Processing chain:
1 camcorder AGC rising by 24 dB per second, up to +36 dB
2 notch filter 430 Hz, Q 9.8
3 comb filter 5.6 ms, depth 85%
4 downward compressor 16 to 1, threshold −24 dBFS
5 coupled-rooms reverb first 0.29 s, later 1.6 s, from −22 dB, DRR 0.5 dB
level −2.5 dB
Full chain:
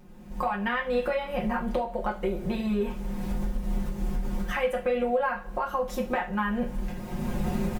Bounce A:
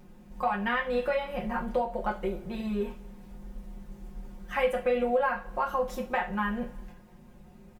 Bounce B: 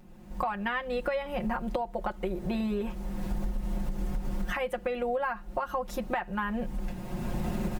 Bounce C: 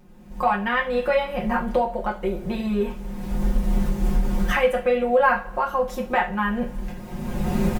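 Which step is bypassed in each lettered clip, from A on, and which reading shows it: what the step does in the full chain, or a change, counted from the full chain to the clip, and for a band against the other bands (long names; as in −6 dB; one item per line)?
1, change in crest factor +2.5 dB
5, change in crest factor +2.5 dB
4, average gain reduction 4.0 dB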